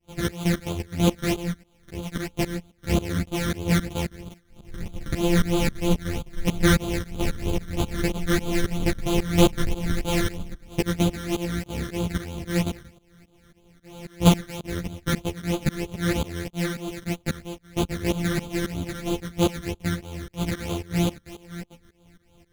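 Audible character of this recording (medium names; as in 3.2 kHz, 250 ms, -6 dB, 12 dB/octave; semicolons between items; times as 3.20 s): a buzz of ramps at a fixed pitch in blocks of 256 samples; phasing stages 12, 3.1 Hz, lowest notch 800–1800 Hz; tremolo saw up 3.7 Hz, depth 95%; a shimmering, thickened sound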